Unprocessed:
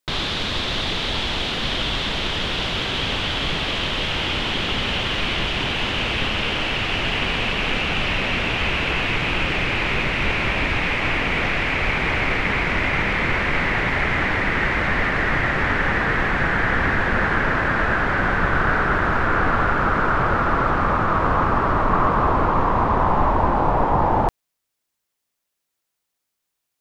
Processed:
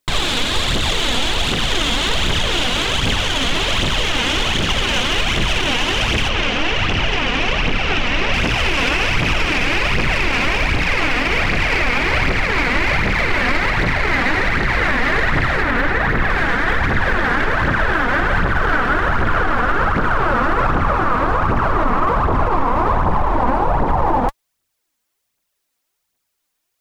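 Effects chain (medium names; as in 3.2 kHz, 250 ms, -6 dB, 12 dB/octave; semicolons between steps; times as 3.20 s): tracing distortion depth 0.067 ms; 15.62–16.30 s: treble shelf 4.4 kHz -10 dB; phaser 1.3 Hz, delay 4.3 ms, feedback 54%; 6.29–8.34 s: distance through air 98 m; loudness maximiser +10.5 dB; trim -6.5 dB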